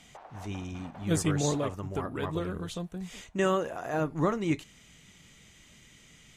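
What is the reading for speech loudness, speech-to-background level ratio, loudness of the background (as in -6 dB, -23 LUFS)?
-31.5 LUFS, 19.0 dB, -50.5 LUFS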